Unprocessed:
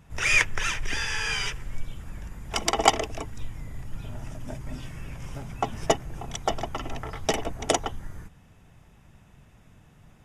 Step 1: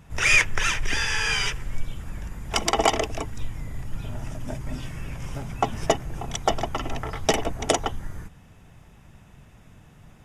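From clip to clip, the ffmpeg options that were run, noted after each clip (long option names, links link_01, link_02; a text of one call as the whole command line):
ffmpeg -i in.wav -af "alimiter=level_in=9dB:limit=-1dB:release=50:level=0:latency=1,volume=-5dB" out.wav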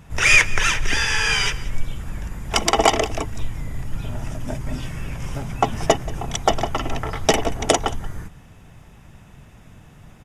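ffmpeg -i in.wav -af "aecho=1:1:181:0.112,volume=4.5dB" out.wav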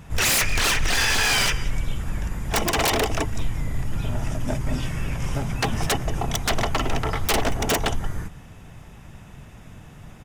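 ffmpeg -i in.wav -af "aeval=exprs='0.133*(abs(mod(val(0)/0.133+3,4)-2)-1)':channel_layout=same,volume=2.5dB" out.wav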